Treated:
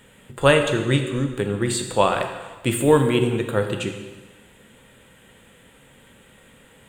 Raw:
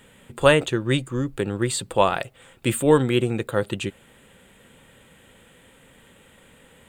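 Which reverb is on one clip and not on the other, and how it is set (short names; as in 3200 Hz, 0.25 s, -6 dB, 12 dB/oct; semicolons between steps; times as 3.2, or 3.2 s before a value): plate-style reverb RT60 1.3 s, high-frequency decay 0.95×, DRR 4.5 dB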